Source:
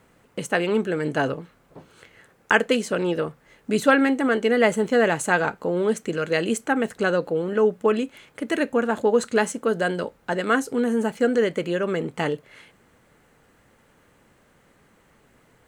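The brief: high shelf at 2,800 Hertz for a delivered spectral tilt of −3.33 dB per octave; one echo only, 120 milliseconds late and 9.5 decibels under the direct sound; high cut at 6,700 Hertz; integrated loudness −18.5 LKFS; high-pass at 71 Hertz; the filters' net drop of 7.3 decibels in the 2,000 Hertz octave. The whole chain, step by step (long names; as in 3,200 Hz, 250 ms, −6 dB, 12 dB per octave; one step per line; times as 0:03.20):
high-pass filter 71 Hz
low-pass filter 6,700 Hz
parametric band 2,000 Hz −7 dB
high-shelf EQ 2,800 Hz −8 dB
single-tap delay 120 ms −9.5 dB
level +5.5 dB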